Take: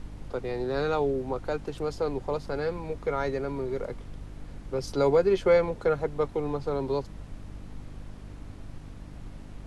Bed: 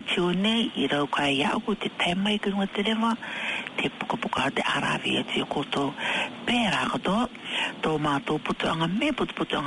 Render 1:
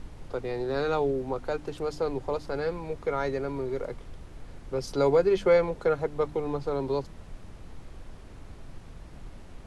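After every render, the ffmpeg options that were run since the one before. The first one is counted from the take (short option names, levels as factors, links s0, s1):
-af "bandreject=f=50:t=h:w=4,bandreject=f=100:t=h:w=4,bandreject=f=150:t=h:w=4,bandreject=f=200:t=h:w=4,bandreject=f=250:t=h:w=4,bandreject=f=300:t=h:w=4"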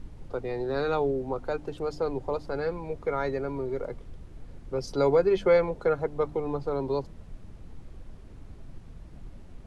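-af "afftdn=nr=7:nf=-46"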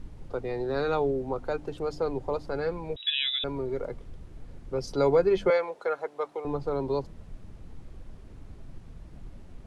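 -filter_complex "[0:a]asettb=1/sr,asplit=3[s0][s1][s2];[s0]atrim=end=2.964[s3];[s1]atrim=start=2.96:end=3.44,asetpts=PTS-STARTPTS,afade=t=in:d=0.004:c=qsin,afade=t=out:st=0.476:d=0.004:c=qsin,lowpass=f=3300:t=q:w=0.5098,lowpass=f=3300:t=q:w=0.6013,lowpass=f=3300:t=q:w=0.9,lowpass=f=3300:t=q:w=2.563,afreqshift=-3900[s4];[s2]atrim=start=3.436[s5];[s3][s4]acrossfade=d=0.004:c1=hsin:c2=qsin[s6];[s6][s5]acrossfade=d=0.004:c1=qsin:c2=hsin,asettb=1/sr,asplit=3[s7][s8][s9];[s7]atrim=end=5.504[s10];[s8]atrim=start=5.5:end=6.45,asetpts=PTS-STARTPTS,afade=t=in:d=0.004:c=qsin,afade=t=out:st=0.946:d=0.004:c=qsin,highpass=570[s11];[s9]atrim=start=6.446[s12];[s10][s11]acrossfade=d=0.004:c1=hsin:c2=qsin[s13];[s13][s12]acrossfade=d=0.004:c1=qsin:c2=hsin"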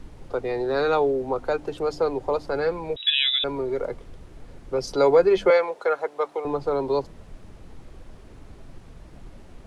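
-filter_complex "[0:a]acrossover=split=300[s0][s1];[s0]alimiter=level_in=2.37:limit=0.0631:level=0:latency=1,volume=0.422[s2];[s1]acontrast=69[s3];[s2][s3]amix=inputs=2:normalize=0"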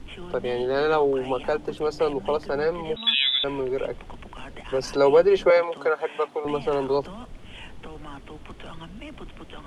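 -filter_complex "[1:a]volume=0.158[s0];[0:a][s0]amix=inputs=2:normalize=0"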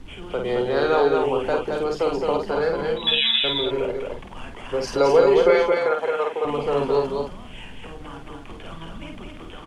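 -filter_complex "[0:a]asplit=2[s0][s1];[s1]adelay=49,volume=0.596[s2];[s0][s2]amix=inputs=2:normalize=0,aecho=1:1:218:0.631"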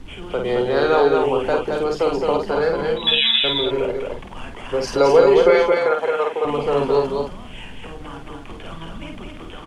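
-af "volume=1.41,alimiter=limit=0.794:level=0:latency=1"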